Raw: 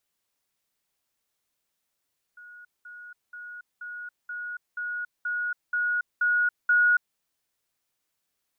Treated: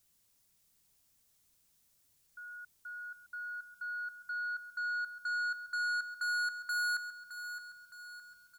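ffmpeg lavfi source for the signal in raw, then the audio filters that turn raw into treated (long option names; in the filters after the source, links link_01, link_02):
-f lavfi -i "aevalsrc='pow(10,(-44+3*floor(t/0.48))/20)*sin(2*PI*1450*t)*clip(min(mod(t,0.48),0.28-mod(t,0.48))/0.005,0,1)':duration=4.8:sample_rate=44100"
-af "bass=frequency=250:gain=13,treble=frequency=4000:gain=9,asoftclip=type=tanh:threshold=-32dB,aecho=1:1:615|1230|1845|2460|3075:0.299|0.149|0.0746|0.0373|0.0187"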